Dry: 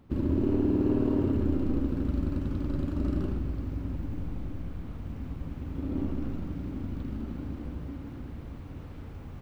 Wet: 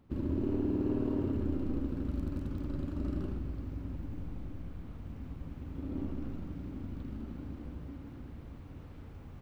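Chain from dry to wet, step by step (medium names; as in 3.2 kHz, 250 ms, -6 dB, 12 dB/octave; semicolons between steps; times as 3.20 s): 2.09–2.63 s: crackle 16 per s -36 dBFS; trim -6 dB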